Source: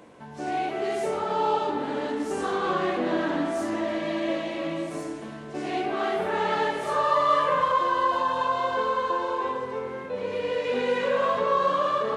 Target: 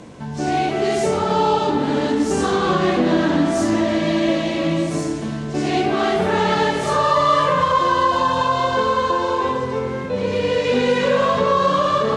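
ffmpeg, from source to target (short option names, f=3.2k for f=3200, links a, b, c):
-filter_complex "[0:a]lowpass=6.4k,bass=f=250:g=12,treble=f=4k:g=12,asplit=2[a][b];[b]alimiter=limit=-16dB:level=0:latency=1:release=170,volume=2dB[c];[a][c]amix=inputs=2:normalize=0"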